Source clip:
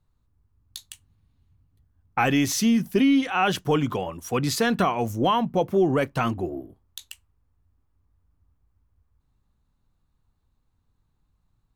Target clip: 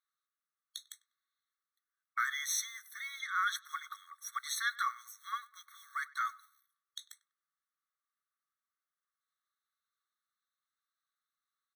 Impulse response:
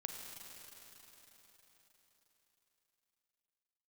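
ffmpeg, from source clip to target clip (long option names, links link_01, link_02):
-filter_complex "[0:a]acrusher=bits=9:mode=log:mix=0:aa=0.000001,asplit=2[link_01][link_02];[link_02]adelay=98,lowpass=frequency=2200:poles=1,volume=-20dB,asplit=2[link_03][link_04];[link_04]adelay=98,lowpass=frequency=2200:poles=1,volume=0.32,asplit=2[link_05][link_06];[link_06]adelay=98,lowpass=frequency=2200:poles=1,volume=0.32[link_07];[link_01][link_03][link_05][link_07]amix=inputs=4:normalize=0,afftfilt=real='re*eq(mod(floor(b*sr/1024/1100),2),1)':imag='im*eq(mod(floor(b*sr/1024/1100),2),1)':win_size=1024:overlap=0.75,volume=-4.5dB"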